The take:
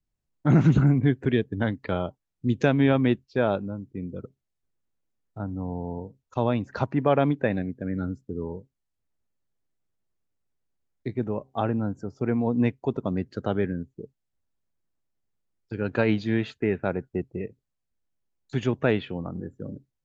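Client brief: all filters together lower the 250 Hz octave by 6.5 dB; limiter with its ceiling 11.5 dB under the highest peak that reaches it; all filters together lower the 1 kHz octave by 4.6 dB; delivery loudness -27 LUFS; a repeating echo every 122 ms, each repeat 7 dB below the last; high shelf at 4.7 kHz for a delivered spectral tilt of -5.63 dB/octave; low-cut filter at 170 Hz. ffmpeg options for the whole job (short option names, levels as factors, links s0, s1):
-af "highpass=170,equalizer=f=250:t=o:g=-6.5,equalizer=f=1000:t=o:g=-6,highshelf=f=4700:g=-8,alimiter=limit=0.075:level=0:latency=1,aecho=1:1:122|244|366|488|610:0.447|0.201|0.0905|0.0407|0.0183,volume=2.51"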